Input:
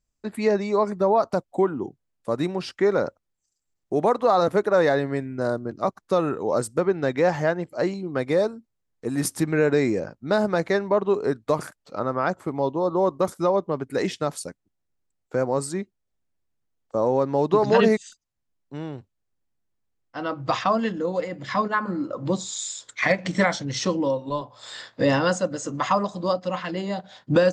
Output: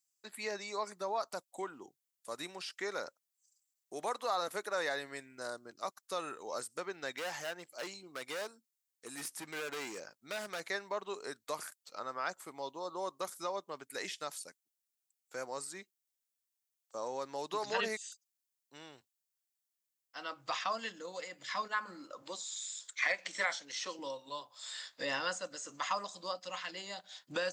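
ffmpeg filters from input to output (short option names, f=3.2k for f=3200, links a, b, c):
-filter_complex "[0:a]asplit=3[a][b][c];[a]afade=t=out:st=7.15:d=0.02[d];[b]asoftclip=type=hard:threshold=-20dB,afade=t=in:st=7.15:d=0.02,afade=t=out:st=10.59:d=0.02[e];[c]afade=t=in:st=10.59:d=0.02[f];[d][e][f]amix=inputs=3:normalize=0,asettb=1/sr,asplit=3[g][h][i];[g]atrim=end=22.224[j];[h]atrim=start=22.22:end=23.99,asetpts=PTS-STARTPTS,afade=t=in:d=0.004:c=qsin,afade=t=out:st=1.766:d=0.004:c=qsin,highpass=300[k];[i]atrim=start=23.986[l];[j][k]acrossfade=d=0.004:c1=hsin:c2=qsin[m];[m][l]acrossfade=d=0.004:c1=qsin:c2=hsin,aderivative,acrossover=split=2900[n][o];[o]acompressor=threshold=-47dB:ratio=4:attack=1:release=60[p];[n][p]amix=inputs=2:normalize=0,volume=4dB"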